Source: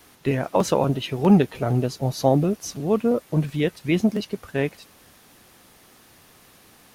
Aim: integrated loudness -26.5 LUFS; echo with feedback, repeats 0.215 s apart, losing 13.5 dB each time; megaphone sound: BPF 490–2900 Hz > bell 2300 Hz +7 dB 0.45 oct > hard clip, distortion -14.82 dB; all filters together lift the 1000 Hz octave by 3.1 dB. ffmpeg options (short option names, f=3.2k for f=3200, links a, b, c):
-af "highpass=490,lowpass=2.9k,equalizer=f=1k:t=o:g=4.5,equalizer=f=2.3k:t=o:w=0.45:g=7,aecho=1:1:215|430:0.211|0.0444,asoftclip=type=hard:threshold=-13.5dB,volume=1dB"